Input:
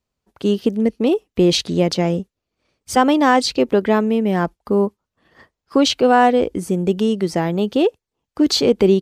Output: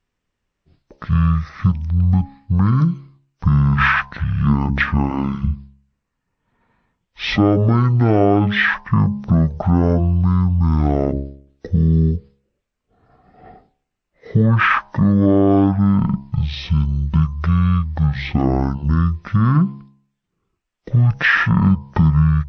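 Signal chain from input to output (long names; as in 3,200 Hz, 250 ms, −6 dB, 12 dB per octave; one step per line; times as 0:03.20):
change of speed 0.401×
dynamic equaliser 920 Hz, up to +4 dB, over −33 dBFS, Q 0.79
hum removal 68.77 Hz, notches 15
downward compressor 2.5 to 1, threshold −17 dBFS, peak gain reduction 6.5 dB
level +4.5 dB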